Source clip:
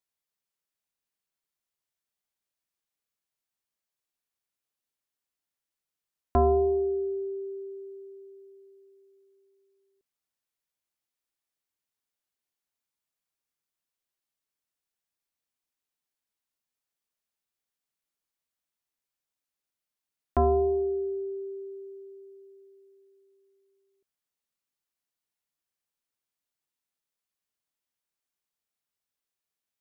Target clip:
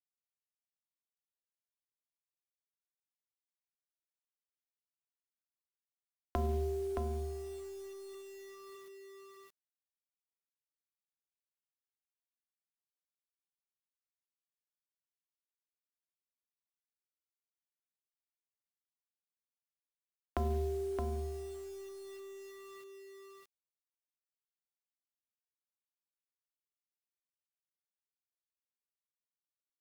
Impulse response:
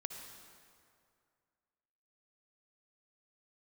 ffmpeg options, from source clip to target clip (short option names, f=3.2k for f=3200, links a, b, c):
-filter_complex "[0:a]asplit=3[a][b][c];[a]afade=t=out:st=8.13:d=0.02[d];[b]equalizer=f=130:w=0.96:g=-10,afade=t=in:st=8.13:d=0.02,afade=t=out:st=8.74:d=0.02[e];[c]afade=t=in:st=8.74:d=0.02[f];[d][e][f]amix=inputs=3:normalize=0,acrossover=split=130[g][h];[g]asoftclip=type=hard:threshold=-35dB[i];[h]acompressor=threshold=-38dB:ratio=8[j];[i][j]amix=inputs=2:normalize=0,acrusher=bits=8:mix=0:aa=0.000001,aeval=exprs='0.106*(cos(1*acos(clip(val(0)/0.106,-1,1)))-cos(1*PI/2))+0.000841*(cos(8*acos(clip(val(0)/0.106,-1,1)))-cos(8*PI/2))':c=same,asplit=2[k][l];[l]aecho=0:1:620:0.631[m];[k][m]amix=inputs=2:normalize=0,adynamicequalizer=threshold=0.001:dfrequency=1600:dqfactor=0.7:tfrequency=1600:tqfactor=0.7:attack=5:release=100:ratio=0.375:range=2.5:mode=cutabove:tftype=highshelf,volume=1.5dB"